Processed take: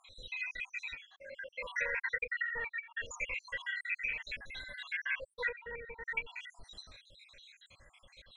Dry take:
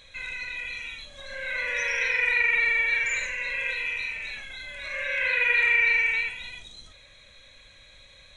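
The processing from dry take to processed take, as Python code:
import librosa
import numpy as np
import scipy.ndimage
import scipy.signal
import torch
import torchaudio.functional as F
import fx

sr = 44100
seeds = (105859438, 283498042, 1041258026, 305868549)

y = fx.spec_dropout(x, sr, seeds[0], share_pct=71)
y = fx.bandpass_q(y, sr, hz=830.0, q=0.53, at=(0.95, 1.63))
y = fx.env_lowpass_down(y, sr, base_hz=530.0, full_db=-22.5)
y = y * 10.0 ** (-2.0 / 20.0)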